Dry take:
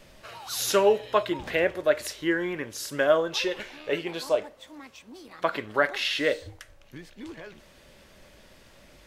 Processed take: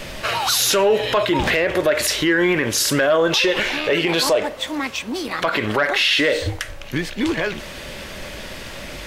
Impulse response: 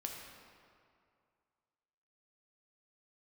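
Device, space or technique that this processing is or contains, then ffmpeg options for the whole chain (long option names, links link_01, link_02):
mastering chain: -af "equalizer=frequency=2500:width_type=o:width=1.6:gain=3.5,acompressor=threshold=-26dB:ratio=2,asoftclip=type=tanh:threshold=-16.5dB,alimiter=level_in=28dB:limit=-1dB:release=50:level=0:latency=1,volume=-8.5dB"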